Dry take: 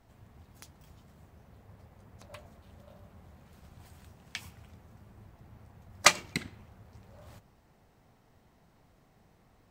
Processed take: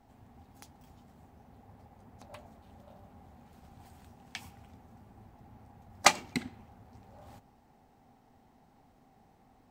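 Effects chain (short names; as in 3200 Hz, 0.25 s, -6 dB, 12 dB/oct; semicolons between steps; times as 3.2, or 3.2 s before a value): thirty-one-band EQ 250 Hz +11 dB, 400 Hz +3 dB, 800 Hz +12 dB; gain -3 dB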